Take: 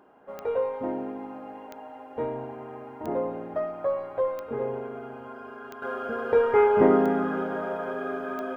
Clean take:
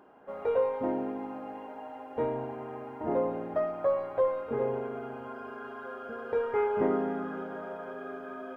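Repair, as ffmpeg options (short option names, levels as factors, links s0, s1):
-af "adeclick=t=4,asetnsamples=n=441:p=0,asendcmd='5.82 volume volume -8.5dB',volume=1"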